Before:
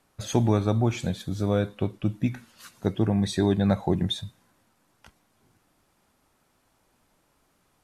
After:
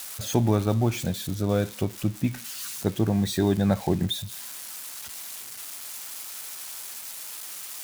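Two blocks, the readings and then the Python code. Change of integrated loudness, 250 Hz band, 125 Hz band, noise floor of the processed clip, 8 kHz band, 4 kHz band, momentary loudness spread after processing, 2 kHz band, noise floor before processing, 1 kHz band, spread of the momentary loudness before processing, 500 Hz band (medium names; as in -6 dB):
-2.0 dB, 0.0 dB, 0.0 dB, -41 dBFS, +9.5 dB, +2.5 dB, 12 LU, +1.5 dB, -69 dBFS, 0.0 dB, 8 LU, 0.0 dB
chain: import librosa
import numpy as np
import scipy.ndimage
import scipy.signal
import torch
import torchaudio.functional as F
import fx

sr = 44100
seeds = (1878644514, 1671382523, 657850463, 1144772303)

y = x + 0.5 * 10.0 ** (-26.0 / 20.0) * np.diff(np.sign(x), prepend=np.sign(x[:1]))
y = fx.high_shelf(y, sr, hz=8000.0, db=-5.5)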